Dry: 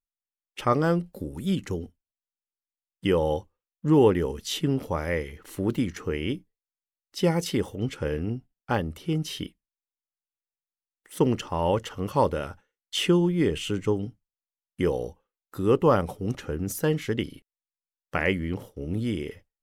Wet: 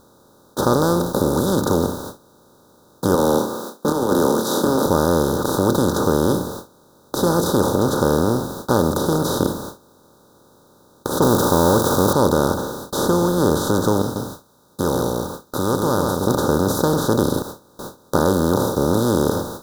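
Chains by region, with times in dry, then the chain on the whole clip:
0:03.15–0:04.86: Chebyshev high-pass filter 220 Hz, order 5 + compressor whose output falls as the input rises −26 dBFS, ratio −0.5 + double-tracking delay 26 ms −11 dB
0:11.22–0:12.13: spike at every zero crossing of −27.5 dBFS + leveller curve on the samples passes 2 + parametric band 4,300 Hz −10 dB 0.22 octaves
0:14.02–0:16.27: guitar amp tone stack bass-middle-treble 5-5-5 + single-tap delay 137 ms −10.5 dB
whole clip: compressor on every frequency bin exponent 0.2; noise gate with hold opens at −16 dBFS; elliptic band-stop filter 1,500–3,800 Hz, stop band 40 dB; level −2 dB

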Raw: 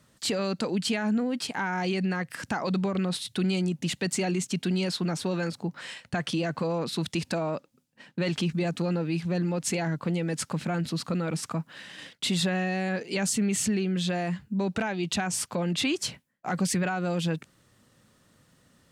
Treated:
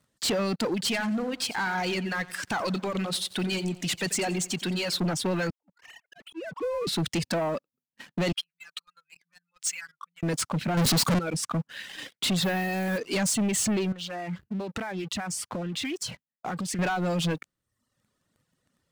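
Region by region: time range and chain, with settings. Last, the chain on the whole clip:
0:00.74–0:05.00: low-shelf EQ 490 Hz −8 dB + repeating echo 89 ms, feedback 49%, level −9 dB
0:05.50–0:06.87: three sine waves on the formant tracks + volume swells 600 ms
0:08.32–0:10.23: expanding power law on the bin magnitudes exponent 1.7 + elliptic high-pass filter 1,200 Hz
0:10.77–0:11.19: bass and treble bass +3 dB, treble +10 dB + leveller curve on the samples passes 5
0:12.39–0:12.98: high-shelf EQ 8,900 Hz −12 dB + noise that follows the level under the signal 21 dB
0:13.92–0:16.79: downward compressor 16 to 1, threshold −33 dBFS + highs frequency-modulated by the lows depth 0.28 ms
whole clip: reverb reduction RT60 0.93 s; leveller curve on the samples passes 3; level −5 dB

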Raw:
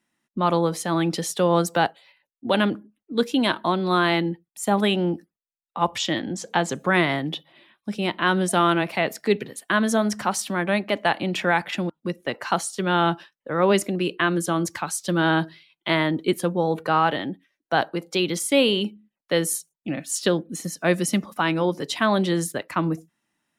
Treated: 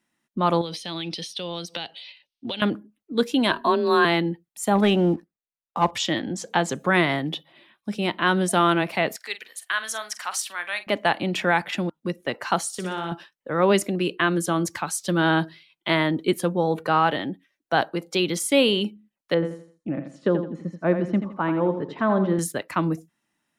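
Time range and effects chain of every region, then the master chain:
0:00.61–0:02.62: high shelf with overshoot 2,100 Hz +13.5 dB, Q 1.5 + downward compressor 8 to 1, threshold −27 dBFS + Savitzky-Golay smoothing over 15 samples
0:03.51–0:04.05: EQ curve with evenly spaced ripples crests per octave 1.4, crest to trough 10 dB + frequency shifter +25 Hz
0:04.75–0:05.91: high-shelf EQ 3,100 Hz −10.5 dB + leveller curve on the samples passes 1
0:09.16–0:10.87: high-pass filter 1,400 Hz + double-tracking delay 45 ms −13 dB
0:12.68–0:13.12: high-shelf EQ 11,000 Hz +4.5 dB + downward compressor 5 to 1, threshold −27 dBFS + flutter between parallel walls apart 10.2 metres, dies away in 0.52 s
0:19.34–0:22.39: low-pass filter 1,200 Hz + notch filter 740 Hz, Q 11 + repeating echo 83 ms, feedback 32%, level −9 dB
whole clip: no processing

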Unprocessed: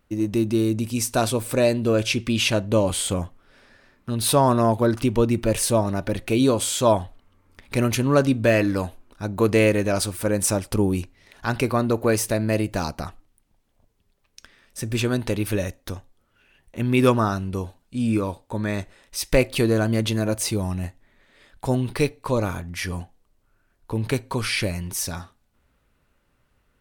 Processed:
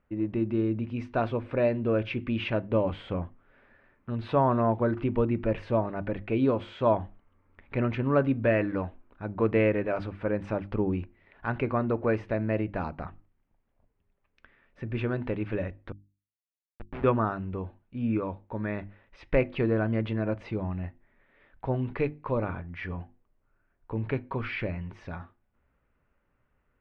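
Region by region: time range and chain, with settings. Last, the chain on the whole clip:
0:15.92–0:17.04: spectral tilt +2.5 dB per octave + comparator with hysteresis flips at −19.5 dBFS
whole clip: low-pass filter 2,400 Hz 24 dB per octave; mains-hum notches 50/100/150/200/250/300/350 Hz; level −5.5 dB

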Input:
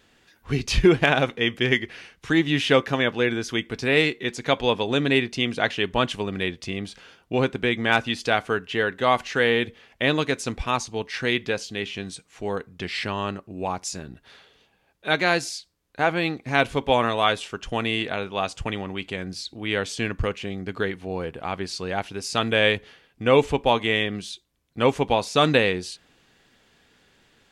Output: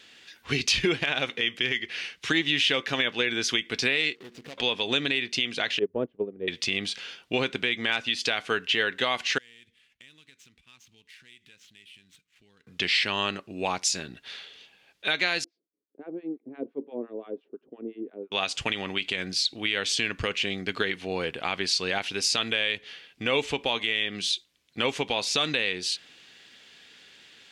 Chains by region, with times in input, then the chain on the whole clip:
0:04.15–0:04.58: running median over 41 samples + downward compressor 8 to 1, threshold −39 dBFS
0:05.79–0:06.48: low-pass with resonance 450 Hz, resonance Q 2.4 + mains-hum notches 50/100 Hz + expander for the loud parts 2.5 to 1, over −31 dBFS
0:09.38–0:12.67: running median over 9 samples + guitar amp tone stack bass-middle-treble 6-0-2 + downward compressor 8 to 1, threshold −55 dBFS
0:15.44–0:18.32: two-band tremolo in antiphase 5.8 Hz, depth 100%, crossover 1,000 Hz + flat-topped band-pass 330 Hz, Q 1.6
whole clip: meter weighting curve D; downward compressor 4 to 1, threshold −21 dBFS; brickwall limiter −12 dBFS

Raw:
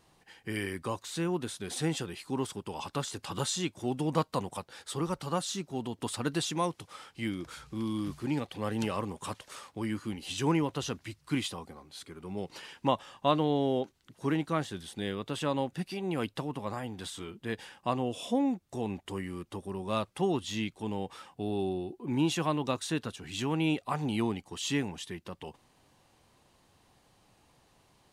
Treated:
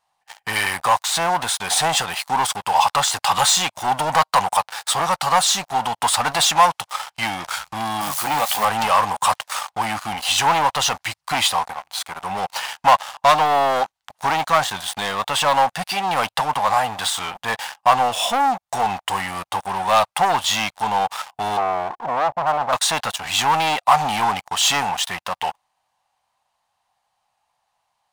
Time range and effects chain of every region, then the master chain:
0:08.01–0:08.65: spike at every zero crossing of −36 dBFS + high-pass filter 170 Hz 6 dB per octave + double-tracking delay 14 ms −5.5 dB
0:21.57–0:22.73: Chebyshev low-pass filter 760 Hz, order 4 + saturating transformer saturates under 1,500 Hz
whole clip: leveller curve on the samples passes 5; low shelf with overshoot 530 Hz −13.5 dB, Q 3; level +1.5 dB

